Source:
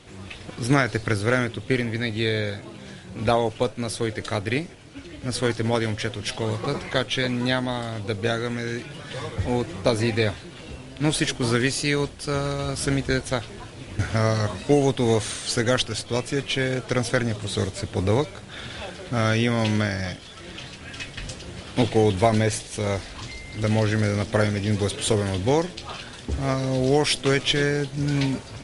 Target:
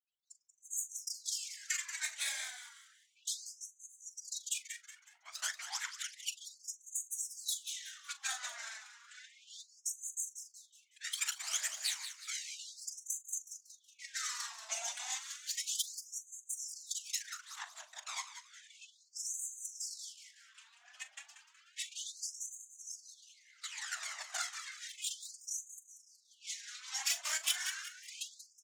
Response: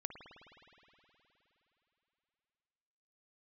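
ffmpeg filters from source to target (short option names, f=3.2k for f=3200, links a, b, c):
-filter_complex "[0:a]afftfilt=real='re*gte(hypot(re,im),0.00794)':imag='im*gte(hypot(re,im),0.00794)':win_size=1024:overlap=0.75,adynamicsmooth=sensitivity=1.5:basefreq=740,equalizer=f=7k:t=o:w=0.64:g=14,acrossover=split=680|1600[a][b][c];[a]acompressor=threshold=-24dB:ratio=4[d];[b]acompressor=threshold=-33dB:ratio=4[e];[c]acompressor=threshold=-32dB:ratio=4[f];[d][e][f]amix=inputs=3:normalize=0,aderivative,afftfilt=real='hypot(re,im)*cos(2*PI*random(0))':imag='hypot(re,im)*sin(2*PI*random(1))':win_size=512:overlap=0.75,aphaser=in_gain=1:out_gain=1:delay=4.6:decay=0.63:speed=0.17:type=triangular,asplit=2[g][h];[h]adelay=41,volume=-14dB[i];[g][i]amix=inputs=2:normalize=0,asplit=5[j][k][l][m][n];[k]adelay=185,afreqshift=-100,volume=-10dB[o];[l]adelay=370,afreqshift=-200,volume=-18.2dB[p];[m]adelay=555,afreqshift=-300,volume=-26.4dB[q];[n]adelay=740,afreqshift=-400,volume=-34.5dB[r];[j][o][p][q][r]amix=inputs=5:normalize=0,afftfilt=real='re*gte(b*sr/1024,580*pow(6200/580,0.5+0.5*sin(2*PI*0.32*pts/sr)))':imag='im*gte(b*sr/1024,580*pow(6200/580,0.5+0.5*sin(2*PI*0.32*pts/sr)))':win_size=1024:overlap=0.75,volume=8dB"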